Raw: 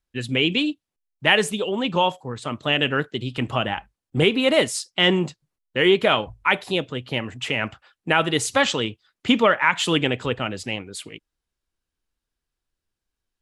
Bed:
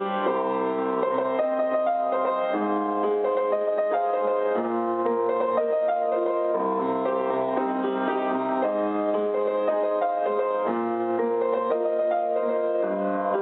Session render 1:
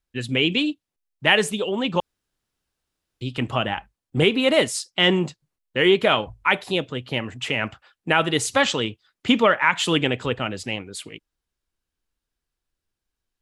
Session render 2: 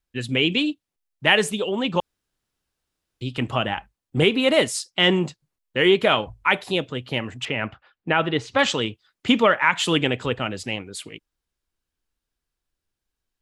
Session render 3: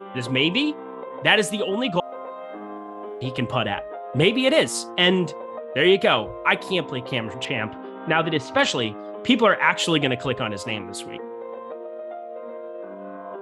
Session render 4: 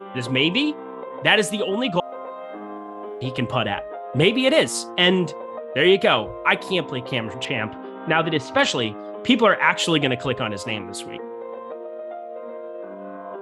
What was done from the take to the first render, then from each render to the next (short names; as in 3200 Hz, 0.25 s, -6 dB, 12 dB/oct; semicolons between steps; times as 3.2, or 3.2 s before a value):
2–3.21 room tone
7.45–8.59 air absorption 220 m
add bed -11 dB
gain +1 dB; limiter -3 dBFS, peak gain reduction 1 dB